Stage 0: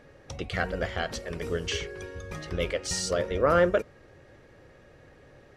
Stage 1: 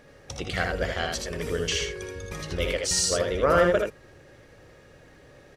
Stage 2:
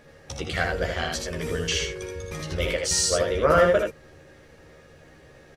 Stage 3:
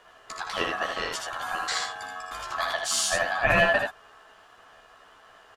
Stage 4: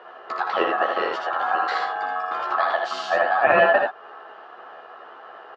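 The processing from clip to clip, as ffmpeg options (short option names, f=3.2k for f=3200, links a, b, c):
-filter_complex "[0:a]highshelf=f=3.9k:g=8,asplit=2[a][b];[b]aecho=0:1:60|79:0.299|0.631[c];[a][c]amix=inputs=2:normalize=0"
-filter_complex "[0:a]asplit=2[a][b];[b]adelay=13,volume=-4.5dB[c];[a][c]amix=inputs=2:normalize=0"
-af "aeval=exprs='val(0)*sin(2*PI*1200*n/s)':c=same"
-filter_complex "[0:a]asplit=2[a][b];[b]acompressor=threshold=-34dB:ratio=6,volume=2.5dB[c];[a][c]amix=inputs=2:normalize=0,highpass=250,equalizer=f=370:t=q:w=4:g=9,equalizer=f=530:t=q:w=4:g=6,equalizer=f=790:t=q:w=4:g=8,equalizer=f=1.3k:t=q:w=4:g=5,equalizer=f=2.3k:t=q:w=4:g=-5,equalizer=f=3.4k:t=q:w=4:g=-6,lowpass=f=3.5k:w=0.5412,lowpass=f=3.5k:w=1.3066"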